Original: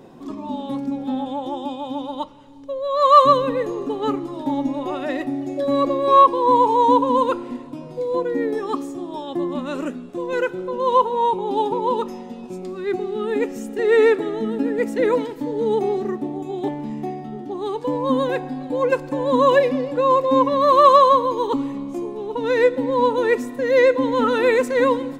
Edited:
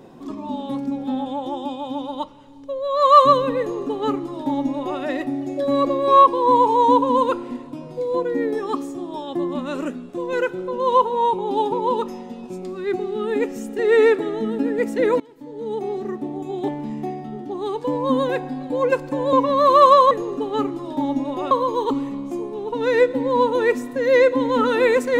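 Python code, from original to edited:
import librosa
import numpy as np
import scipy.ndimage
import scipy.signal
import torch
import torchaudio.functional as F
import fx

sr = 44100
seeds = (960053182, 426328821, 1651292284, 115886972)

y = fx.edit(x, sr, fx.duplicate(start_s=3.6, length_s=1.4, to_s=21.14),
    fx.fade_in_from(start_s=15.2, length_s=1.3, floor_db=-22.0),
    fx.cut(start_s=19.33, length_s=1.03), tone=tone)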